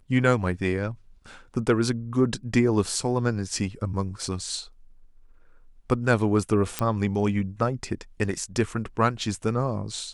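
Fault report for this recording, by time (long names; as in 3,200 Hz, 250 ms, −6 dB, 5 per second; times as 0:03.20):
0:06.79: click −9 dBFS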